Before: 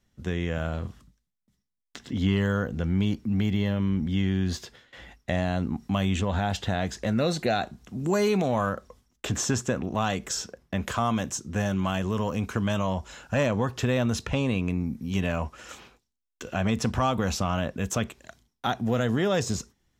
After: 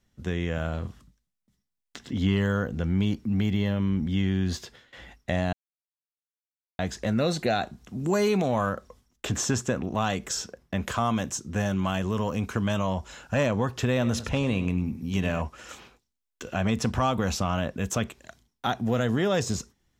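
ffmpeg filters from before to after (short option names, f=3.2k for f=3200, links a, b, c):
-filter_complex "[0:a]asettb=1/sr,asplit=3[a][b][c];[a]atrim=end=13.914[d];[b]atrim=start=13.91:end=15.42,asetpts=PTS-STARTPTS,afade=t=in:d=0.004:c=qsin,afade=t=out:st=1.506:d=0.004:c=qsin,aecho=1:1:100|200|300:0.224|0.0784|0.0274,atrim=end_sample=66591[e];[c]atrim=start=15.416[f];[d][e]acrossfade=d=0.004:c1=hsin:c2=qsin[g];[g][f]acrossfade=d=0.004:c1=qsin:c2=hsin,asplit=3[h][i][j];[h]atrim=end=5.53,asetpts=PTS-STARTPTS,afade=t=out:st=5.526:d=0.004:c=hsin[k];[i]atrim=start=5.53:end=6.79,asetpts=PTS-STARTPTS,volume=0[l];[j]atrim=start=6.79,asetpts=PTS-STARTPTS,afade=t=in:d=0.004:c=hsin[m];[k][l][m]concat=n=3:v=0:a=1"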